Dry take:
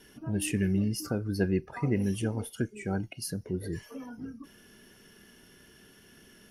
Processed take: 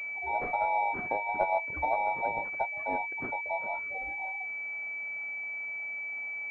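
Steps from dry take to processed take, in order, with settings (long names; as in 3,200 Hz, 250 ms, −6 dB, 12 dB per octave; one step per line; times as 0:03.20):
frequency inversion band by band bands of 1,000 Hz
switching amplifier with a slow clock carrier 2,300 Hz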